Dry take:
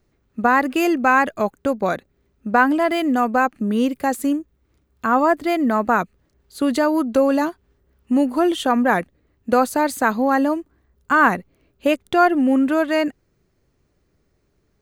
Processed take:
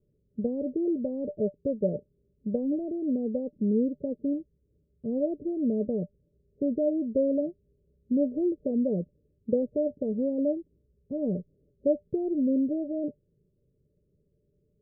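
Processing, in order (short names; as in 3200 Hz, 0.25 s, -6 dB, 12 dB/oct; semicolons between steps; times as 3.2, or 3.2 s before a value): rippled Chebyshev low-pass 610 Hz, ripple 9 dB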